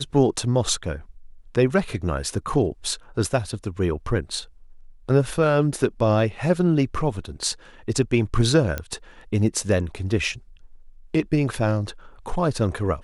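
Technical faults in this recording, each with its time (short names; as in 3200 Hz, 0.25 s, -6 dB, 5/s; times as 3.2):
8.78 pop -12 dBFS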